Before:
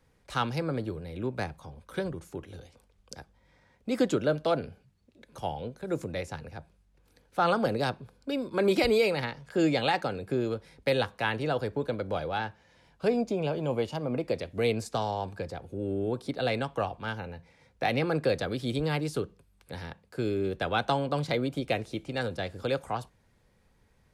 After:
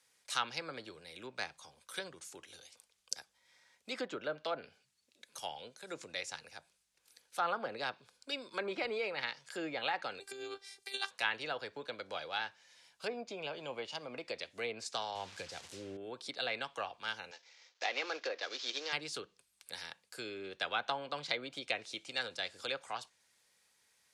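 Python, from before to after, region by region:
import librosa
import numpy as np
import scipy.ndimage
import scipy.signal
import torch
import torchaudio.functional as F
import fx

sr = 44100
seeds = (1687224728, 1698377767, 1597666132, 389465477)

y = fx.chain(x, sr, fx.high_shelf(hz=5600.0, db=8.0),
    fx.over_compress(threshold_db=-29.0, ratio=-0.5),
    fx.robotise(hz=393.0), at=(10.2, 11.11))
y = fx.chain(y, sr, fx.low_shelf(hz=160.0, db=11.5),
    fx.quant_dither(seeds[0], bits=8, dither='none'),
    fx.resample_linear(factor=2), at=(15.15, 15.97))
y = fx.chain(y, sr, fx.cvsd(bps=32000),
    fx.highpass(hz=310.0, slope=24), at=(17.31, 18.93))
y = fx.env_lowpass_down(y, sr, base_hz=1500.0, full_db=-22.0)
y = scipy.signal.sosfilt(scipy.signal.butter(2, 9200.0, 'lowpass', fs=sr, output='sos'), y)
y = np.diff(y, prepend=0.0)
y = F.gain(torch.from_numpy(y), 10.0).numpy()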